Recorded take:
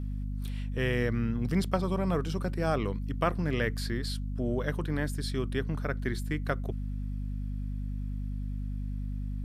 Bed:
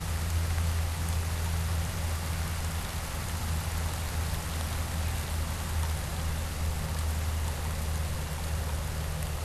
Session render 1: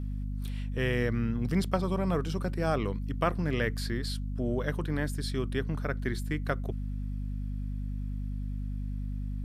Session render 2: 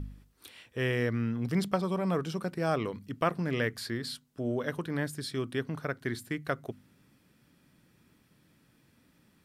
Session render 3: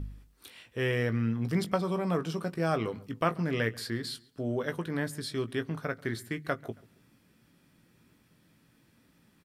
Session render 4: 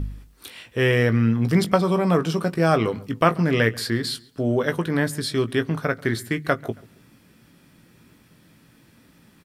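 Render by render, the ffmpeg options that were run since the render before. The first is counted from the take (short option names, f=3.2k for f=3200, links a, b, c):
-af anull
-af "bandreject=f=50:t=h:w=4,bandreject=f=100:t=h:w=4,bandreject=f=150:t=h:w=4,bandreject=f=200:t=h:w=4,bandreject=f=250:t=h:w=4"
-filter_complex "[0:a]asplit=2[a][b];[b]adelay=18,volume=-10dB[c];[a][c]amix=inputs=2:normalize=0,asplit=2[d][e];[e]adelay=137,lowpass=f=3.9k:p=1,volume=-22.5dB,asplit=2[f][g];[g]adelay=137,lowpass=f=3.9k:p=1,volume=0.36[h];[d][f][h]amix=inputs=3:normalize=0"
-af "volume=10dB"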